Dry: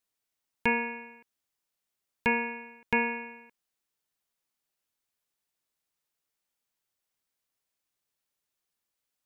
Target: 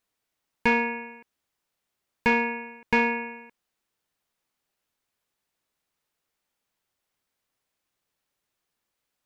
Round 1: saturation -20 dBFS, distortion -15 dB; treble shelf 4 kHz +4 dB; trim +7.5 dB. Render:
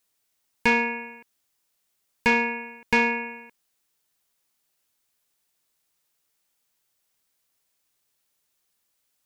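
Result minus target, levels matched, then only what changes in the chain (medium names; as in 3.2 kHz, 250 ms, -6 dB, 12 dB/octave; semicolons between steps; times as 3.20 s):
8 kHz band +7.0 dB
change: treble shelf 4 kHz -7.5 dB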